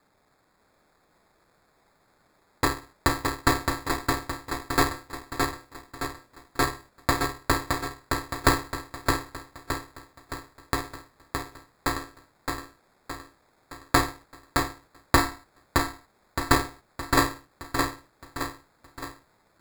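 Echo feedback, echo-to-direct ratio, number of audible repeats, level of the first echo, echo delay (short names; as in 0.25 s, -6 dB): 49%, -3.0 dB, 6, -4.0 dB, 0.617 s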